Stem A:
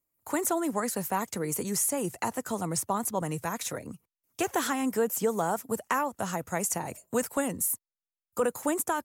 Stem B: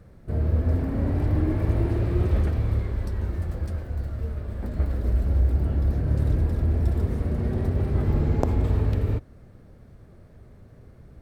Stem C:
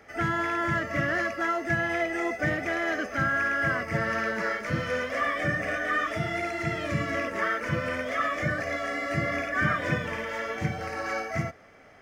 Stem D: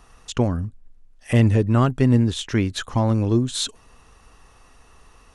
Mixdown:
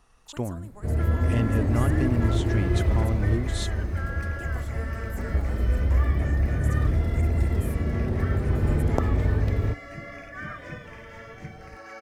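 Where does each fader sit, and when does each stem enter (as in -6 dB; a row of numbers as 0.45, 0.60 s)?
-19.0, -0.5, -11.5, -10.0 dB; 0.00, 0.55, 0.80, 0.00 s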